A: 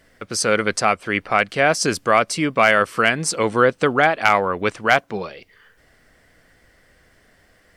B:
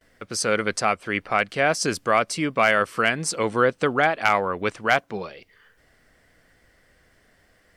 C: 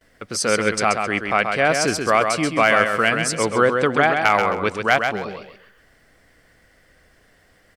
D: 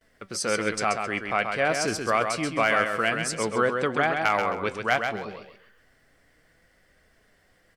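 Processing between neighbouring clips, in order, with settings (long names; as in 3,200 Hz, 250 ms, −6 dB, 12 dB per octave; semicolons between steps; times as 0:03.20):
noise gate with hold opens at −49 dBFS; level −4 dB
repeating echo 132 ms, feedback 27%, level −5.5 dB; level +2.5 dB
flanger 0.28 Hz, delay 4.4 ms, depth 5.1 ms, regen +77%; level −2 dB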